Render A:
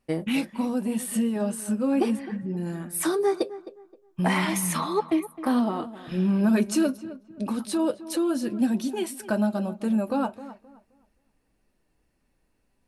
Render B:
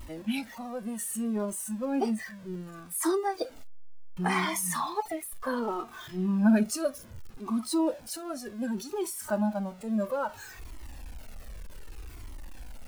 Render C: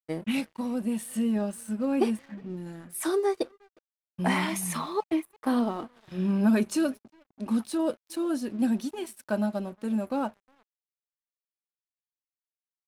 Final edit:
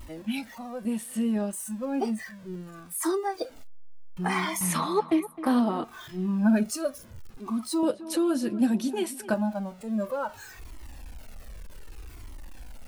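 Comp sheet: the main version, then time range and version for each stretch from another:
B
0.85–1.53 s: from C
4.61–5.84 s: from A
7.83–9.34 s: from A

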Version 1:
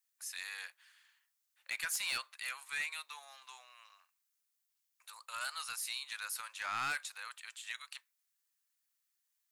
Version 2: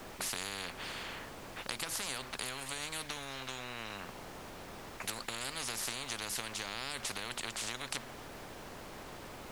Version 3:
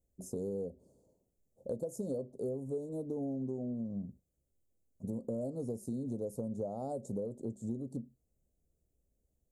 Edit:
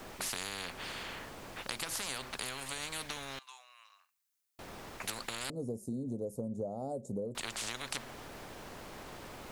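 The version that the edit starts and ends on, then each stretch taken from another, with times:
2
3.39–4.59 s: from 1
5.50–7.35 s: from 3

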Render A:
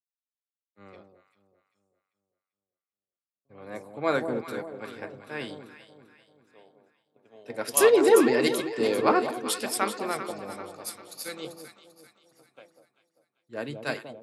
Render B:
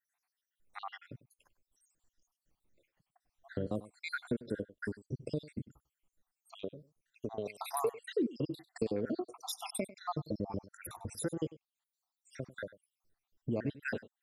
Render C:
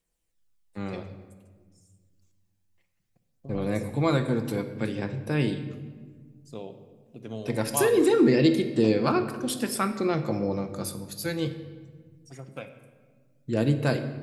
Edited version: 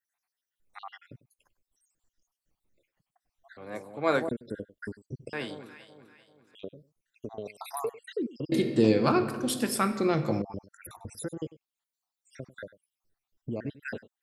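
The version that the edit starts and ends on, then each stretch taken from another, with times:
B
3.57–4.29 s: from A
5.33–6.55 s: from A
8.52–10.42 s: from C

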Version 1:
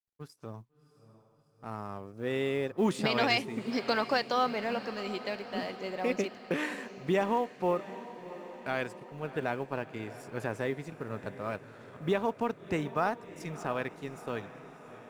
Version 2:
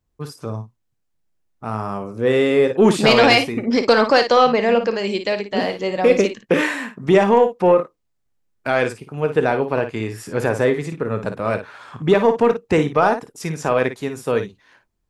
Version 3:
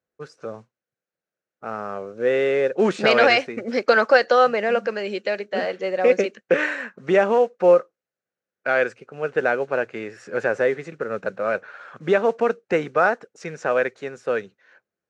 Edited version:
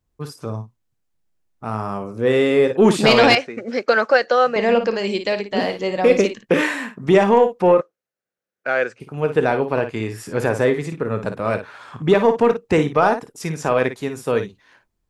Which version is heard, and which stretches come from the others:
2
3.35–4.56 s: from 3
7.81–9.00 s: from 3
not used: 1

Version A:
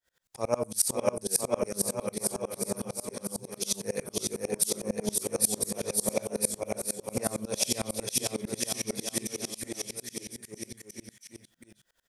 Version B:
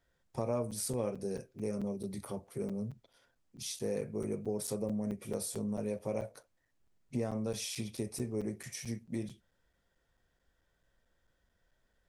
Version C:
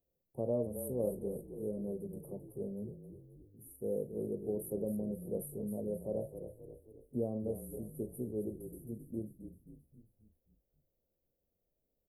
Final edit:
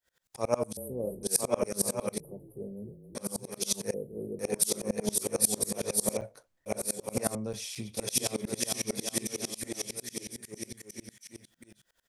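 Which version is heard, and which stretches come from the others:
A
0.77–1.23 s: from C
2.20–3.15 s: from C
3.94–4.39 s: from C
6.17–6.66 s: from B
7.35–7.97 s: from B

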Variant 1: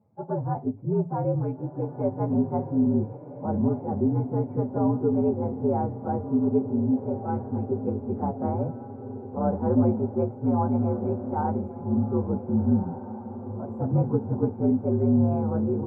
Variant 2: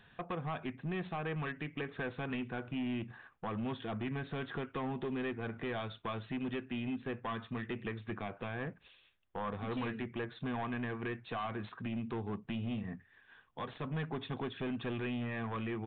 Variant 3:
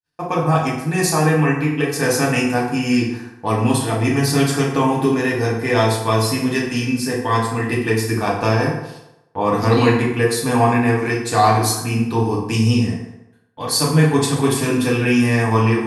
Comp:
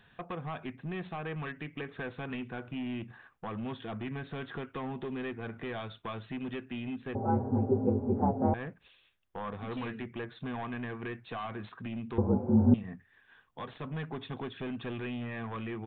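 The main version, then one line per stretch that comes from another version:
2
7.15–8.54 s: from 1
12.18–12.74 s: from 1
not used: 3

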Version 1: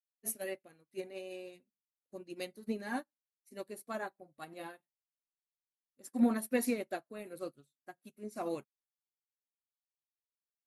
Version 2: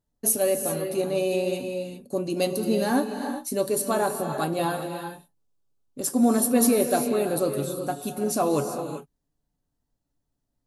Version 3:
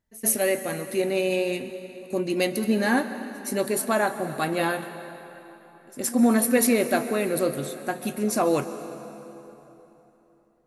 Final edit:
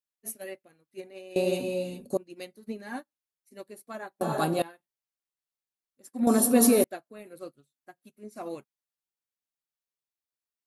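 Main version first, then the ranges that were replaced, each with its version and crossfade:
1
1.36–2.17 s: from 2
4.21–4.62 s: from 2
6.27–6.84 s: from 2
not used: 3

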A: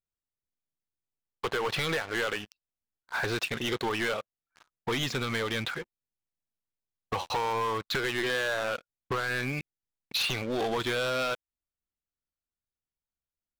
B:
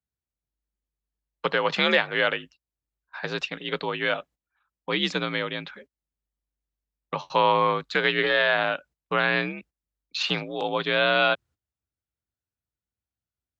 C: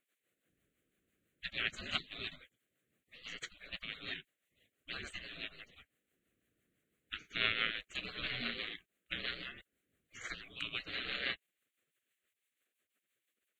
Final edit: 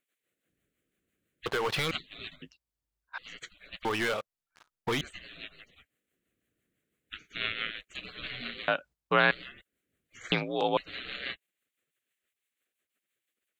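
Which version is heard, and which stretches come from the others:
C
1.46–1.91 s: from A
2.42–3.18 s: from B
3.85–5.01 s: from A
8.68–9.31 s: from B
10.32–10.77 s: from B

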